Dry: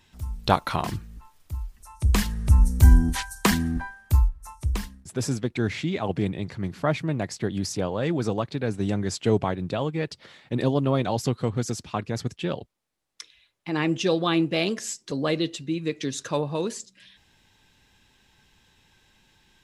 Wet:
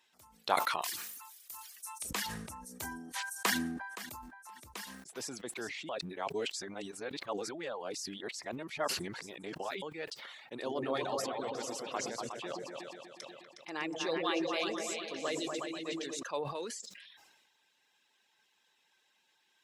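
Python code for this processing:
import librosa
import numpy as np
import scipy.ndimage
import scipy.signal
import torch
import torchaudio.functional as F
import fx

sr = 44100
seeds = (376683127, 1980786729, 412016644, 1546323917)

y = fx.tilt_eq(x, sr, slope=4.5, at=(0.82, 2.11))
y = fx.echo_throw(y, sr, start_s=3.37, length_s=0.83, ms=520, feedback_pct=10, wet_db=-14.0)
y = fx.echo_throw(y, sr, start_s=4.75, length_s=0.56, ms=400, feedback_pct=60, wet_db=-9.0)
y = fx.echo_opening(y, sr, ms=121, hz=400, octaves=2, feedback_pct=70, wet_db=0, at=(10.53, 16.23))
y = fx.edit(y, sr, fx.reverse_span(start_s=5.89, length_s=3.93), tone=tone)
y = fx.dereverb_blind(y, sr, rt60_s=0.6)
y = scipy.signal.sosfilt(scipy.signal.butter(2, 500.0, 'highpass', fs=sr, output='sos'), y)
y = fx.sustainer(y, sr, db_per_s=39.0)
y = F.gain(torch.from_numpy(y), -8.5).numpy()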